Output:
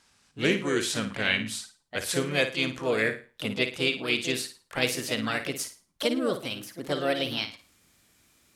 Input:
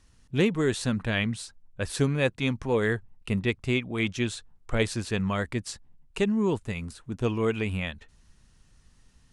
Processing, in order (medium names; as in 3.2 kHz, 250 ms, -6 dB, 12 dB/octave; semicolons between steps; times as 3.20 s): gliding tape speed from 87% -> 131%; high-pass 580 Hz 6 dB/octave; dynamic bell 830 Hz, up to -7 dB, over -46 dBFS, Q 1.7; harmony voices +4 st -6 dB; flutter echo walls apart 9.4 m, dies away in 0.34 s; trim +3.5 dB